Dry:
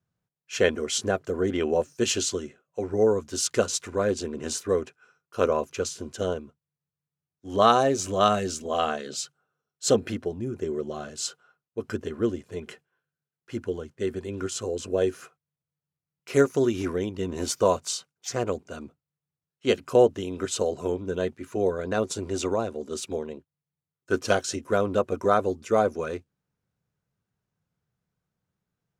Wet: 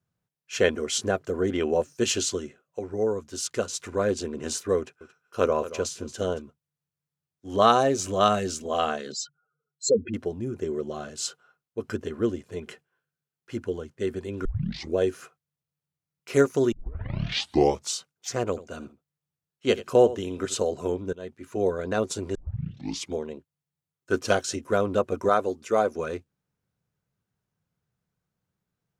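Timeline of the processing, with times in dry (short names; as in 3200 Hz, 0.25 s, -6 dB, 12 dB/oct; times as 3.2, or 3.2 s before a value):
2.79–3.79 gain -4.5 dB
4.78–6.42 echo 0.227 s -15 dB
9.12–10.14 spectral contrast raised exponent 2.6
14.45 tape start 0.51 s
16.72 tape start 1.22 s
18.48–20.6 echo 85 ms -16 dB
21.13–21.63 fade in linear, from -20 dB
22.35 tape start 0.80 s
25.29–25.95 low shelf 150 Hz -11.5 dB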